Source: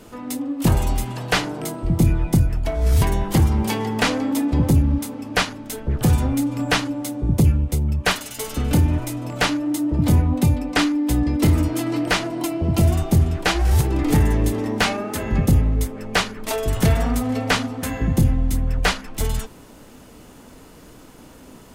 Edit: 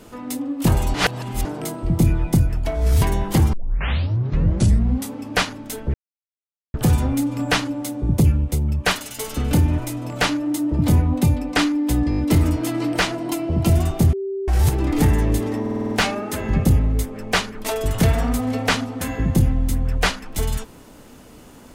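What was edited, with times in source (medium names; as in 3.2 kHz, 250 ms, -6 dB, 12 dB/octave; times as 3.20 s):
0.94–1.45 s: reverse
3.53 s: tape start 1.59 s
5.94 s: insert silence 0.80 s
11.30 s: stutter 0.02 s, 5 plays
13.25–13.60 s: bleep 390 Hz -23 dBFS
14.73 s: stutter 0.05 s, 7 plays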